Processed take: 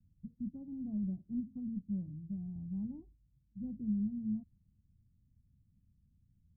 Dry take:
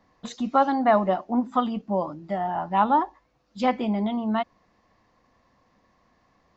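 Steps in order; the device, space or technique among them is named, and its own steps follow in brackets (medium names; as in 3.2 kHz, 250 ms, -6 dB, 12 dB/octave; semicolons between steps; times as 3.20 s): the neighbour's flat through the wall (low-pass 160 Hz 24 dB/octave; peaking EQ 89 Hz +4 dB 0.73 oct); trim +1.5 dB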